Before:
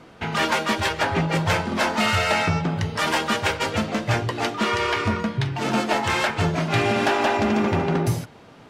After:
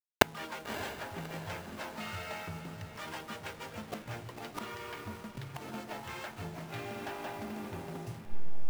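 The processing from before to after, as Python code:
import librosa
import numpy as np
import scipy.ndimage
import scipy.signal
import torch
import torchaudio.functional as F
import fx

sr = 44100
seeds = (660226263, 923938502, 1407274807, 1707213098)

y = fx.delta_hold(x, sr, step_db=-28.0)
y = fx.gate_flip(y, sr, shuts_db=-22.0, range_db=-38)
y = fx.echo_diffused(y, sr, ms=596, feedback_pct=50, wet_db=-12)
y = y * librosa.db_to_amplitude(18.0)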